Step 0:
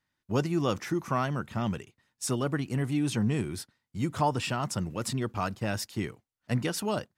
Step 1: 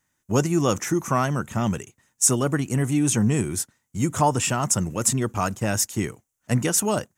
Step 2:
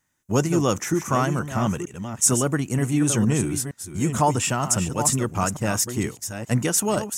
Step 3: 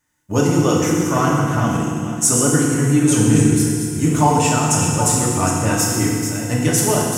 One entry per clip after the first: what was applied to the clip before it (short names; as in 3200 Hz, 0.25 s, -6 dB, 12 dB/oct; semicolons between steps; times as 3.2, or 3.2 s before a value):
resonant high shelf 5500 Hz +6.5 dB, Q 3; gain +6.5 dB
reverse delay 0.464 s, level -8.5 dB
FDN reverb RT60 2 s, low-frequency decay 1.25×, high-frequency decay 0.95×, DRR -4 dB